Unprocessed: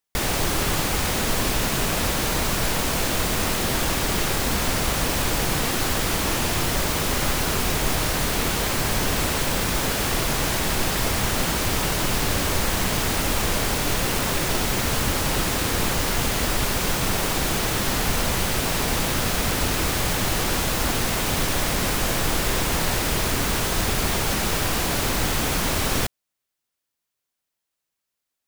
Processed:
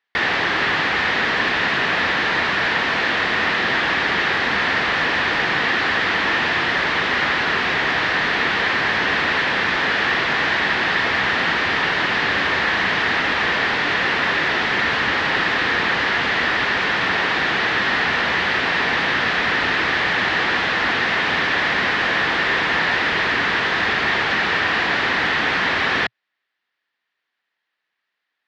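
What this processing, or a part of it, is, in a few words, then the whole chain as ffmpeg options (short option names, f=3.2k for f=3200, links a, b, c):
overdrive pedal into a guitar cabinet: -filter_complex "[0:a]asplit=2[a][b];[b]highpass=f=720:p=1,volume=16dB,asoftclip=type=tanh:threshold=-8.5dB[c];[a][c]amix=inputs=2:normalize=0,lowpass=f=4.7k:p=1,volume=-6dB,highpass=92,equalizer=f=120:t=q:w=4:g=-4,equalizer=f=580:t=q:w=4:g=-4,equalizer=f=1.8k:t=q:w=4:g=10,lowpass=f=4k:w=0.5412,lowpass=f=4k:w=1.3066,volume=-1dB"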